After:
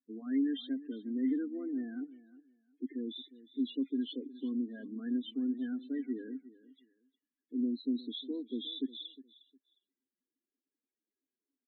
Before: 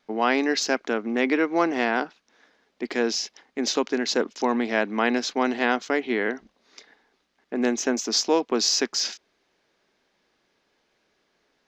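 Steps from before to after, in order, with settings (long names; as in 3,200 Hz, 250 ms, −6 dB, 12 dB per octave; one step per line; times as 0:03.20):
hearing-aid frequency compression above 1,700 Hz 1.5 to 1
leveller curve on the samples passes 1
high-shelf EQ 7,000 Hz +9.5 dB
spectral peaks only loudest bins 8
formant filter i
repeating echo 358 ms, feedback 21%, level −18 dB
level −5 dB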